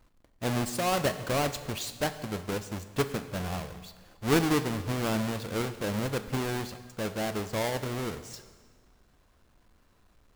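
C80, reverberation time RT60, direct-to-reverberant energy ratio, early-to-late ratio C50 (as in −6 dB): 13.5 dB, 1.6 s, 10.0 dB, 12.0 dB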